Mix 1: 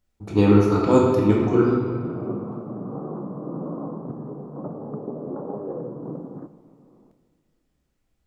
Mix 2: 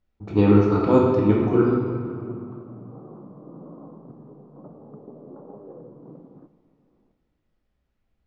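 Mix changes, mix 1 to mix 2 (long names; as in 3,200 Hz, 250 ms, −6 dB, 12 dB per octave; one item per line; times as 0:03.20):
background −10.5 dB
master: add high-frequency loss of the air 180 metres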